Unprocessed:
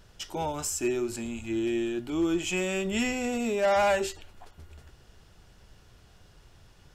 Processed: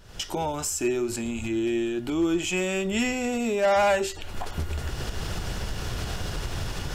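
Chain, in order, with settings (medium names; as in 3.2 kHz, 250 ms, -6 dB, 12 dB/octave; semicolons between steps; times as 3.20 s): recorder AGC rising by 68 dB/s; trim +2.5 dB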